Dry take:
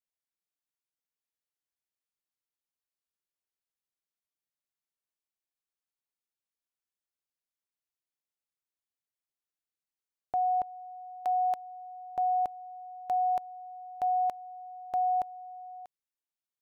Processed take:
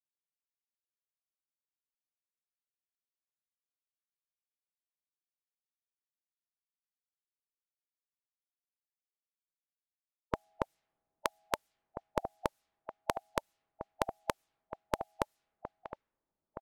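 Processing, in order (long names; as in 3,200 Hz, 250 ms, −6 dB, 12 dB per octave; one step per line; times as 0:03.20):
slap from a distant wall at 280 metres, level −10 dB
gate on every frequency bin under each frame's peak −20 dB weak
low-pass that shuts in the quiet parts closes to 610 Hz, open at −53.5 dBFS
level +17 dB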